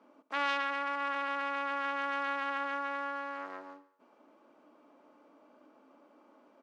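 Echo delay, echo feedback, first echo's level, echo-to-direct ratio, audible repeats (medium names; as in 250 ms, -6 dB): 72 ms, 58%, -17.0 dB, -15.5 dB, 4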